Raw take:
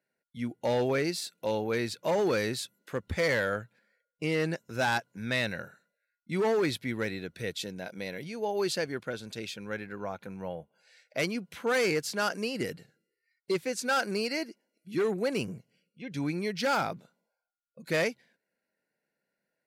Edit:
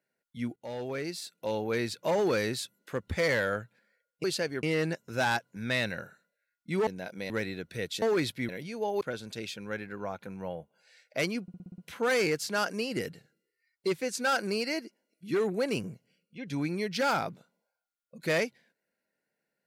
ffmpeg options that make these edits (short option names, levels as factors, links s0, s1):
-filter_complex "[0:a]asplit=15[s0][s1][s2][s3][s4][s5][s6][s7][s8][s9][s10][s11][s12][s13][s14];[s0]atrim=end=0.56,asetpts=PTS-STARTPTS,afade=t=out:st=0.556:d=0.004:c=hsin:silence=0.188365[s15];[s1]atrim=start=0.56:end=4.242,asetpts=PTS-STARTPTS,afade=t=in:d=1.24:silence=0.188365[s16];[s2]atrim=start=8.618:end=9.012[s17];[s3]atrim=start=4.238:end=6.482[s18];[s4]atrim=start=7.668:end=8.102[s19];[s5]atrim=start=6.948:end=7.672[s20];[s6]atrim=start=6.478:end=6.952[s21];[s7]atrim=start=8.098:end=8.622[s22];[s8]atrim=start=9.008:end=11.482[s23];[s9]atrim=start=11.418:end=11.482[s24];[s10]atrim=start=11.418:end=11.482[s25];[s11]atrim=start=11.418:end=11.482[s26];[s12]atrim=start=11.418:end=11.482[s27];[s13]atrim=start=11.418:end=11.482[s28];[s14]atrim=start=11.418[s29];[s15][s16]concat=n=2:v=0:a=1[s30];[s30][s17]acrossfade=d=0.004:c1=hsin:c2=hsin[s31];[s31][s18]acrossfade=d=0.004:c1=hsin:c2=hsin[s32];[s32][s19]acrossfade=d=0.004:c1=hsin:c2=hsin[s33];[s33][s20]acrossfade=d=0.004:c1=hsin:c2=hsin[s34];[s34][s21]acrossfade=d=0.004:c1=hsin:c2=hsin[s35];[s35][s22]acrossfade=d=0.004:c1=hsin:c2=hsin[s36];[s36][s23]acrossfade=d=0.004:c1=hsin:c2=hsin[s37];[s37][s24]acrossfade=d=0.004:c1=hsin:c2=hsin[s38];[s38][s25]acrossfade=d=0.004:c1=hsin:c2=hsin[s39];[s39][s26]acrossfade=d=0.004:c1=hsin:c2=hsin[s40];[s40][s27]acrossfade=d=0.004:c1=hsin:c2=hsin[s41];[s41][s28]acrossfade=d=0.004:c1=hsin:c2=hsin[s42];[s42][s29]acrossfade=d=0.004:c1=hsin:c2=hsin"